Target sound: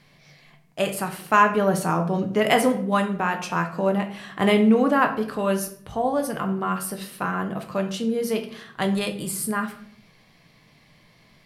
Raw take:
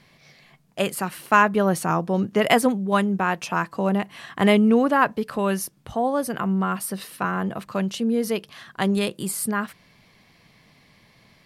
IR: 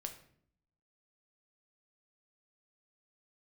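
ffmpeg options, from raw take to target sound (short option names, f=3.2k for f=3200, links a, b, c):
-filter_complex "[1:a]atrim=start_sample=2205[a];[0:a][a]afir=irnorm=-1:irlink=0,volume=2dB"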